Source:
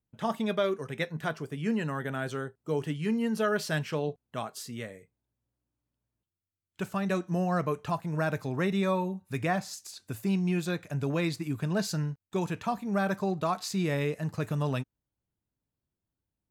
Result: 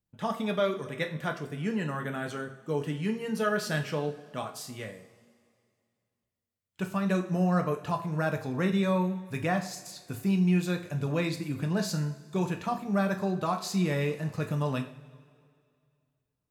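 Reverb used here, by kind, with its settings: two-slope reverb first 0.43 s, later 2.3 s, from -18 dB, DRR 4.5 dB; gain -1 dB

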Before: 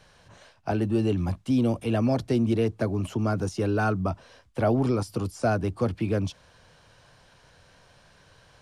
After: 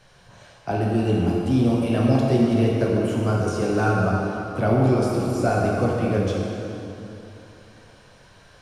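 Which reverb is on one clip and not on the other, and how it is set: plate-style reverb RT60 3.1 s, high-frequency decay 0.75×, DRR -4 dB

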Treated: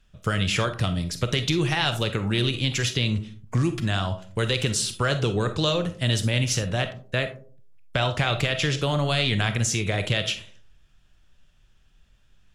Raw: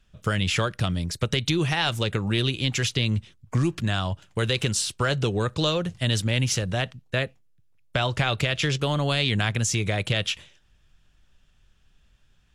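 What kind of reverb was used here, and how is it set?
digital reverb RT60 0.45 s, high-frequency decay 0.35×, pre-delay 5 ms, DRR 8.5 dB

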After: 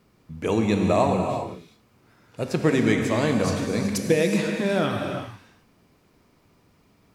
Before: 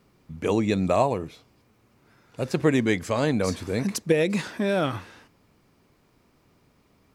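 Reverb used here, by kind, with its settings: non-linear reverb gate 0.42 s flat, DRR 2.5 dB

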